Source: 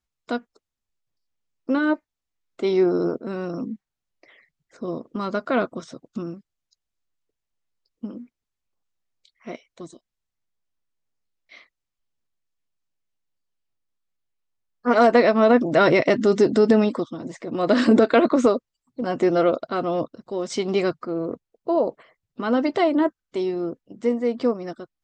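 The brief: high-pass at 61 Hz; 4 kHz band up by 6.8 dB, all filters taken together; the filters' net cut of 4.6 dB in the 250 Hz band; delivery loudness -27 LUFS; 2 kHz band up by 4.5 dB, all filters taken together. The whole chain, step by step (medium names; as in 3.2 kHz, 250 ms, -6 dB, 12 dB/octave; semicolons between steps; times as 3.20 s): high-pass 61 Hz; peaking EQ 250 Hz -6 dB; peaking EQ 2 kHz +4.5 dB; peaking EQ 4 kHz +7 dB; trim -4.5 dB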